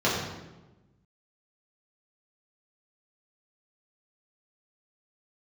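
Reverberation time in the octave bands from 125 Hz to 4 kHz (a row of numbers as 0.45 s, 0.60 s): 1.5 s, 1.5 s, 1.2 s, 1.0 s, 0.90 s, 0.75 s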